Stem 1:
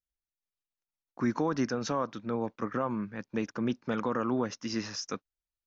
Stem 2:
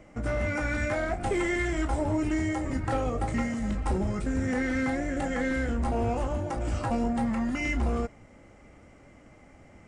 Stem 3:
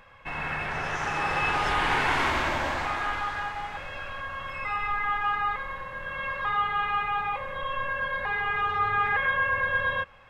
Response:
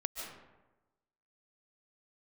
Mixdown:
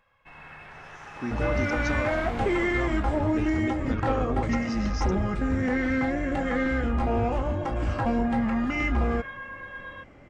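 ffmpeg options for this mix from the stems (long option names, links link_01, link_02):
-filter_complex "[0:a]volume=-4dB[link_01];[1:a]lowpass=4000,adelay=1150,volume=2.5dB[link_02];[2:a]volume=-14dB[link_03];[link_01][link_02][link_03]amix=inputs=3:normalize=0"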